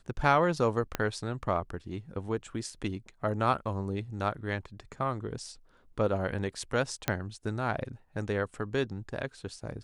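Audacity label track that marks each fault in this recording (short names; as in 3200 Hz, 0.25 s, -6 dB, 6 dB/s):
0.950000	0.950000	pop -14 dBFS
7.080000	7.080000	pop -11 dBFS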